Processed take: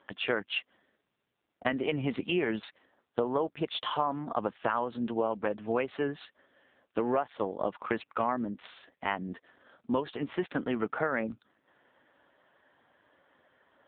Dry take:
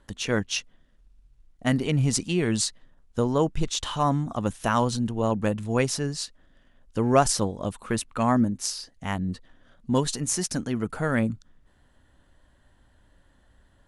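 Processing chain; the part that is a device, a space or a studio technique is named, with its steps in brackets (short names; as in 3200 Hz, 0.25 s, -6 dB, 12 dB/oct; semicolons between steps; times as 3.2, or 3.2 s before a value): 2.2–2.63 de-esser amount 70%; voicemail (BPF 380–3000 Hz; compressor 8:1, threshold -31 dBFS, peak gain reduction 17 dB; gain +6.5 dB; AMR-NB 5.9 kbps 8000 Hz)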